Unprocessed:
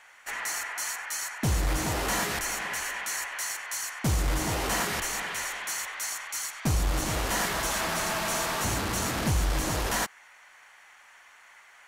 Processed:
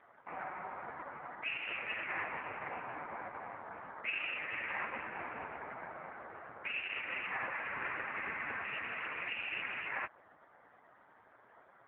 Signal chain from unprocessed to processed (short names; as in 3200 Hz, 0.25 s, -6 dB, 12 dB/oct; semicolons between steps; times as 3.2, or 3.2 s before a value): inverted band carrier 2700 Hz; gain -4 dB; AMR-NB 4.75 kbps 8000 Hz